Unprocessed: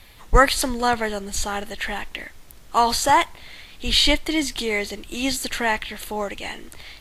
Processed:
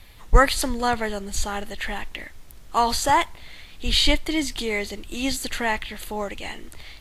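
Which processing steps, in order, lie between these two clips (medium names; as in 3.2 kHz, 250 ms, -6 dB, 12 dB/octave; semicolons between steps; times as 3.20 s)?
bass shelf 140 Hz +5.5 dB; trim -2.5 dB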